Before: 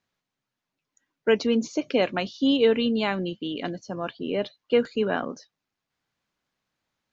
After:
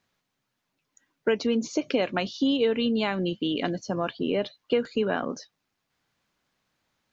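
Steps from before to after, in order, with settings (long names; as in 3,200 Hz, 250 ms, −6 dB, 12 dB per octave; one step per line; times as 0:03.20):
downward compressor 3 to 1, threshold −29 dBFS, peak gain reduction 10.5 dB
level +5.5 dB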